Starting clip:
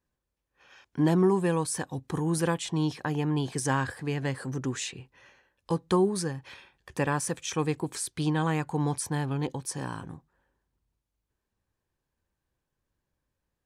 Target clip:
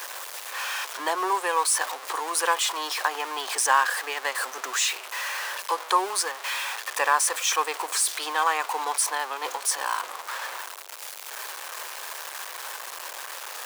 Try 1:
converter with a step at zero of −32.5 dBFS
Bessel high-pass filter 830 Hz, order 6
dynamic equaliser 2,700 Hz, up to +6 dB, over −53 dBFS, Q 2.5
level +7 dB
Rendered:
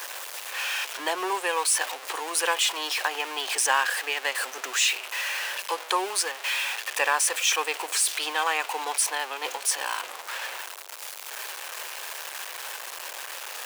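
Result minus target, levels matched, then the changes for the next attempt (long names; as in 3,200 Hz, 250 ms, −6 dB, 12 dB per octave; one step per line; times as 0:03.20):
1,000 Hz band −3.5 dB
change: dynamic equaliser 1,100 Hz, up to +6 dB, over −53 dBFS, Q 2.5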